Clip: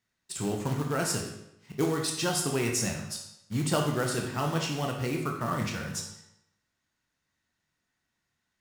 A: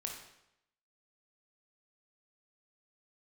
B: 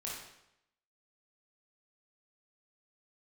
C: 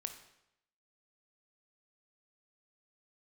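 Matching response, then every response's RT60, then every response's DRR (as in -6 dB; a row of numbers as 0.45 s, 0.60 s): A; 0.80 s, 0.80 s, 0.80 s; 1.0 dB, -5.0 dB, 7.0 dB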